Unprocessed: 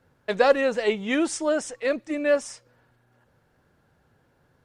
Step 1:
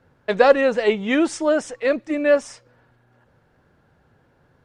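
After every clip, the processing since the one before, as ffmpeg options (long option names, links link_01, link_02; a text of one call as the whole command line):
ffmpeg -i in.wav -af "lowpass=frequency=3700:poles=1,volume=5dB" out.wav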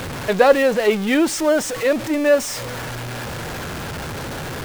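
ffmpeg -i in.wav -af "aeval=exprs='val(0)+0.5*0.0708*sgn(val(0))':channel_layout=same" out.wav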